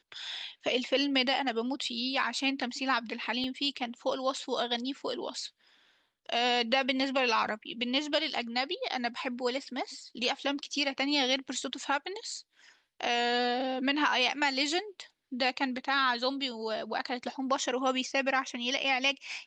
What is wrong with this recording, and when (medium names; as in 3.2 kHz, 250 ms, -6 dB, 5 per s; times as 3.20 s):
3.44 s: dropout 2.2 ms